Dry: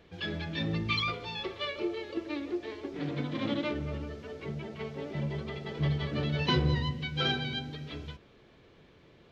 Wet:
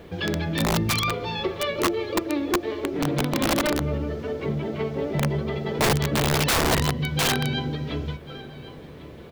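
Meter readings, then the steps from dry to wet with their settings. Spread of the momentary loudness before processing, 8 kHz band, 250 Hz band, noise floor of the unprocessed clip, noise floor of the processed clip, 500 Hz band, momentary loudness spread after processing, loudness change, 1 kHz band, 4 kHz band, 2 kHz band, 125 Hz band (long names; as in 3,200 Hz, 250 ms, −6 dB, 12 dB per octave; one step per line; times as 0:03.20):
11 LU, can't be measured, +8.5 dB, −59 dBFS, −42 dBFS, +10.5 dB, 13 LU, +8.5 dB, +11.5 dB, +6.5 dB, +8.5 dB, +6.5 dB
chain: drawn EQ curve 270 Hz 0 dB, 530 Hz +1 dB, 2,700 Hz −6 dB
in parallel at +2 dB: downward compressor 12 to 1, threshold −44 dBFS, peak gain reduction 22 dB
on the sum: low-shelf EQ 89 Hz −2 dB
repeating echo 1,096 ms, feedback 26%, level −18 dB
bit reduction 12 bits
wrap-around overflow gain 23.5 dB
level +8 dB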